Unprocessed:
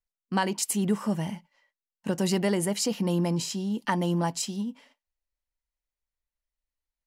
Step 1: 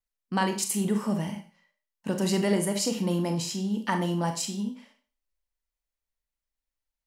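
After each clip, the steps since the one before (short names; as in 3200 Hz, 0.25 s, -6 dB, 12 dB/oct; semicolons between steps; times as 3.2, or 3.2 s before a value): Schroeder reverb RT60 0.38 s, combs from 28 ms, DRR 5.5 dB; gain -1 dB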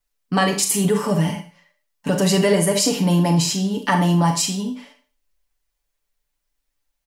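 comb 6.9 ms, depth 83%; in parallel at +1 dB: limiter -19 dBFS, peak gain reduction 7 dB; on the sum: gain +2.5 dB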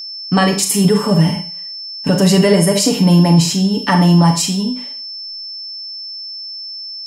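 whine 5300 Hz -29 dBFS; low shelf 230 Hz +7 dB; gain +3 dB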